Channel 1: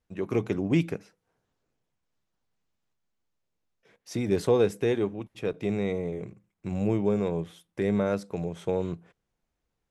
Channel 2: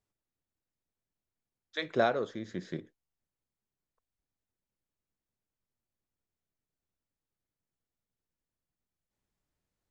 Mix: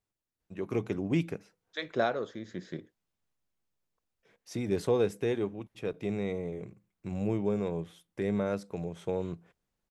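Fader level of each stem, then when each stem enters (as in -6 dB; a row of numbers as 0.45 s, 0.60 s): -4.5 dB, -1.5 dB; 0.40 s, 0.00 s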